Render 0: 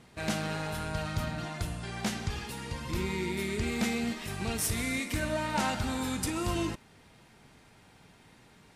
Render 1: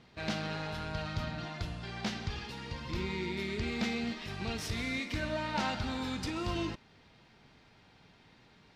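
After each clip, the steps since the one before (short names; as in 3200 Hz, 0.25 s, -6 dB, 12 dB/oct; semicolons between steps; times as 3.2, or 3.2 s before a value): resonant high shelf 6700 Hz -13.5 dB, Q 1.5; gain -3.5 dB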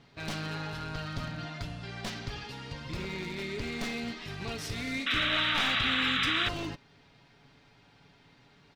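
one-sided fold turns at -31.5 dBFS; comb 7.1 ms, depth 45%; painted sound noise, 5.06–6.49, 1100–4000 Hz -29 dBFS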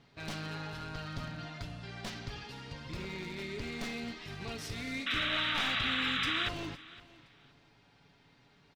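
feedback echo 0.514 s, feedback 24%, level -20 dB; gain -4 dB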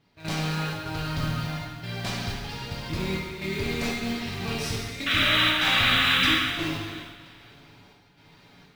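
step gate "..xxxx.xxxxxx" 123 bpm -12 dB; modulation noise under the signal 22 dB; non-linear reverb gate 0.46 s falling, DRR -3 dB; gain +6.5 dB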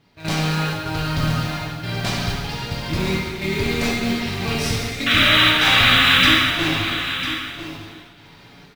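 echo 0.999 s -10.5 dB; gain +7 dB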